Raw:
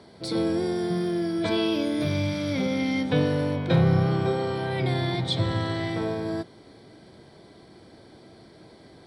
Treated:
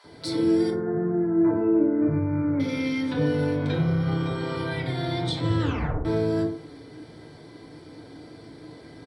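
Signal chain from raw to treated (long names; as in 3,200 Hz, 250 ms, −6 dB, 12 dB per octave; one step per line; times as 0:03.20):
0:00.70–0:02.60: inverse Chebyshev low-pass filter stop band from 3,000 Hz, stop band 40 dB
brickwall limiter −22.5 dBFS, peak gain reduction 10.5 dB
multiband delay without the direct sound highs, lows 40 ms, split 740 Hz
0:05.60: tape stop 0.45 s
feedback delay network reverb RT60 0.51 s, low-frequency decay 0.9×, high-frequency decay 0.45×, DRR −3 dB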